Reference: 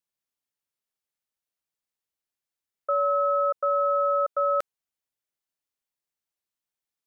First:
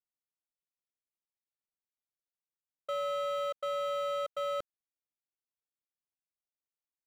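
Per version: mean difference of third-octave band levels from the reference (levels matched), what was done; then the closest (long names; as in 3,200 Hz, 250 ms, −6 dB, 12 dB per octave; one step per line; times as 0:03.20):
12.0 dB: running median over 25 samples
level −7.5 dB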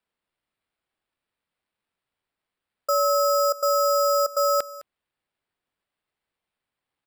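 8.0 dB: decimation without filtering 7×
on a send: single-tap delay 209 ms −18 dB
on the sum: level +2.5 dB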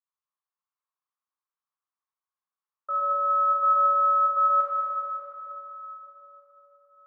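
2.0 dB: resonant band-pass 1,100 Hz, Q 6.1
dense smooth reverb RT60 3.7 s, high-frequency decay 0.8×, DRR −6.5 dB
level +3 dB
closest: third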